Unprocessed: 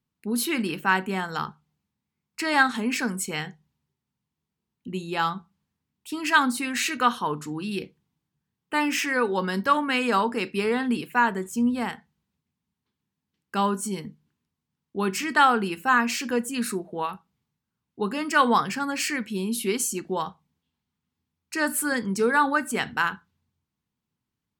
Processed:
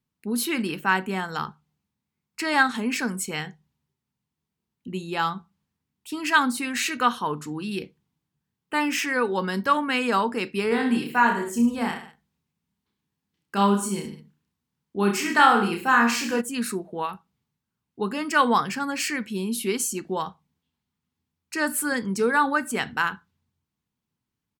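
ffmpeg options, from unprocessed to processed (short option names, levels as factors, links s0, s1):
-filter_complex "[0:a]asplit=3[s0][s1][s2];[s0]afade=t=out:st=10.7:d=0.02[s3];[s1]aecho=1:1:30|64.5|104.2|149.8|202.3:0.631|0.398|0.251|0.158|0.1,afade=t=in:st=10.7:d=0.02,afade=t=out:st=16.4:d=0.02[s4];[s2]afade=t=in:st=16.4:d=0.02[s5];[s3][s4][s5]amix=inputs=3:normalize=0"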